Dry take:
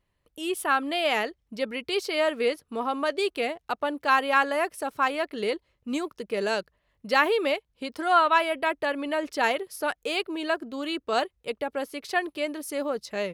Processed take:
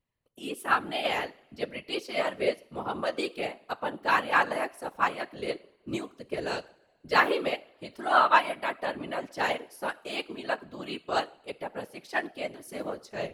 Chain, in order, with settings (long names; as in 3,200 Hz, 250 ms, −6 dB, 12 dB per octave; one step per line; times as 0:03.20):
coupled-rooms reverb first 0.57 s, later 2.2 s, from −18 dB, DRR 11.5 dB
random phases in short frames
expander for the loud parts 1.5 to 1, over −35 dBFS